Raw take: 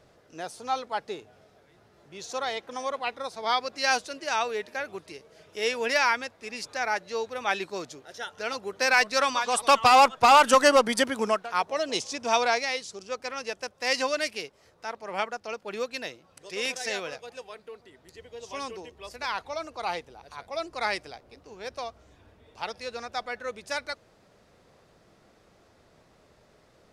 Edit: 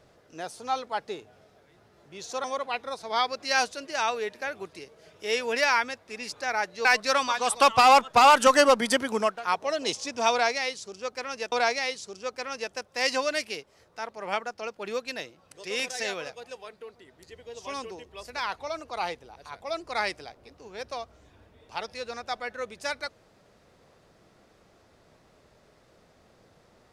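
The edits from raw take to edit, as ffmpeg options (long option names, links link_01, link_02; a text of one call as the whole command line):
ffmpeg -i in.wav -filter_complex "[0:a]asplit=4[link_01][link_02][link_03][link_04];[link_01]atrim=end=2.442[link_05];[link_02]atrim=start=2.768:end=7.182[link_06];[link_03]atrim=start=8.918:end=13.592[link_07];[link_04]atrim=start=12.378[link_08];[link_05][link_06]acrossfade=duration=0.004:curve1=hsin:curve2=hsin[link_09];[link_09][link_07]acrossfade=duration=0.004:curve1=hsin:curve2=hsin[link_10];[link_10][link_08]acrossfade=duration=0.004:curve1=hsin:curve2=hsin" out.wav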